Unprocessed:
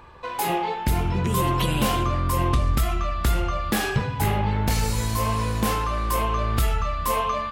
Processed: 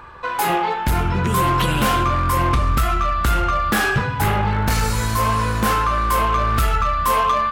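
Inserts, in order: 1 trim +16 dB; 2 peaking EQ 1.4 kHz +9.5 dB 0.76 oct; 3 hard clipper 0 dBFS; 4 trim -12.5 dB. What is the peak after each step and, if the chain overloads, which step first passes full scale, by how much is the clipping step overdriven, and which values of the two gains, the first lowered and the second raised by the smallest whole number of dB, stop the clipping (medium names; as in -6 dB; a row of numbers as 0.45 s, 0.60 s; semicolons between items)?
+5.0 dBFS, +8.5 dBFS, 0.0 dBFS, -12.5 dBFS; step 1, 8.5 dB; step 1 +7 dB, step 4 -3.5 dB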